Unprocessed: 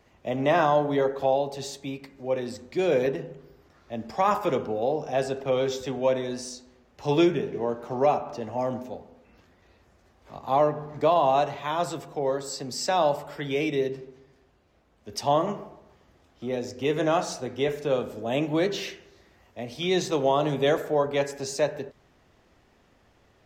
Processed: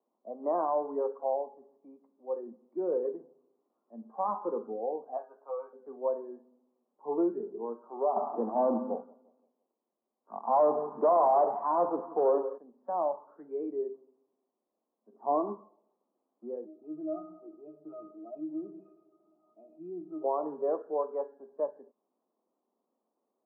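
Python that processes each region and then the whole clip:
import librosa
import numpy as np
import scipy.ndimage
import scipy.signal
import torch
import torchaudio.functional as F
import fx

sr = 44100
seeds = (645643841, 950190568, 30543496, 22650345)

y = fx.chain(x, sr, fx.highpass(hz=720.0, slope=12),
    fx.doubler(ms=14.0, db=-3), at=(5.17, 5.73))
y = fx.chain(y, sr, fx.leveller(passes=3),
    fx.echo_feedback(ms=172, feedback_pct=40, wet_db=-14.5), at=(8.16, 12.58))
y = fx.chain(y, sr, fx.low_shelf(hz=230.0, db=9.5),
    fx.comb(ms=2.8, depth=0.35), at=(15.12, 15.55))
y = fx.chain(y, sr, fx.octave_resonator(note='D#', decay_s=0.16),
    fx.env_flatten(amount_pct=50), at=(16.65, 20.24))
y = scipy.signal.sosfilt(scipy.signal.ellip(4, 1.0, 70, 1100.0, 'lowpass', fs=sr, output='sos'), y)
y = fx.noise_reduce_blind(y, sr, reduce_db=11)
y = scipy.signal.sosfilt(scipy.signal.ellip(4, 1.0, 60, 220.0, 'highpass', fs=sr, output='sos'), y)
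y = y * 10.0 ** (-6.5 / 20.0)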